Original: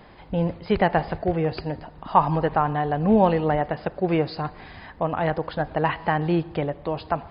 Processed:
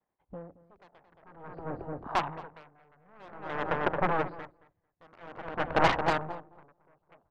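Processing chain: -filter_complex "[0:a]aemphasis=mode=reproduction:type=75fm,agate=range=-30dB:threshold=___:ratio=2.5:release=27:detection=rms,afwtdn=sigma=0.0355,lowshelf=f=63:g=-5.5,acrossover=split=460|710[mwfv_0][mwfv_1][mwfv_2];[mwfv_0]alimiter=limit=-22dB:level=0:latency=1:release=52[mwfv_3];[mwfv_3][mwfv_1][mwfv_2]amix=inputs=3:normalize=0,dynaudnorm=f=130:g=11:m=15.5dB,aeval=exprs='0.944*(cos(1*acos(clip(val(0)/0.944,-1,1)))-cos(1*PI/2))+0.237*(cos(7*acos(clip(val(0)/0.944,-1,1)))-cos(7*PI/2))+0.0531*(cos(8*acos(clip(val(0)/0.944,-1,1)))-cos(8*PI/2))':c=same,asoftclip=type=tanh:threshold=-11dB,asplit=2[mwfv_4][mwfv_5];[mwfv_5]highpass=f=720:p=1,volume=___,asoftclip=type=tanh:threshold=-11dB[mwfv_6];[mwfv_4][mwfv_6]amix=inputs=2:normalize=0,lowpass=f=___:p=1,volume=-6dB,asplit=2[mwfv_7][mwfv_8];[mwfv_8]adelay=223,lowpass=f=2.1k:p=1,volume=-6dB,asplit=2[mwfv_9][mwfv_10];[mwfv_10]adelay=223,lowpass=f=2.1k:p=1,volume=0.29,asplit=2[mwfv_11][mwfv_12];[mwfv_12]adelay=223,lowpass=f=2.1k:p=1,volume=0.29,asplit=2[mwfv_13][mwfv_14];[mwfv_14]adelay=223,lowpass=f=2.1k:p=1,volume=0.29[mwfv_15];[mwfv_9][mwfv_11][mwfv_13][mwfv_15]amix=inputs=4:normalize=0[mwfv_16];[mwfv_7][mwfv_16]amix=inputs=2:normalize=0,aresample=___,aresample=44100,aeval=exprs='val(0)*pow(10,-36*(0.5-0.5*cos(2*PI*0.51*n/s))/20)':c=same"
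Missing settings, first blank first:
-42dB, 8dB, 1.2k, 32000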